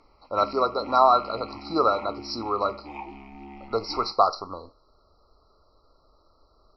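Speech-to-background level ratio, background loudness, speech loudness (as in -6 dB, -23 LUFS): 18.0 dB, -42.5 LUFS, -24.5 LUFS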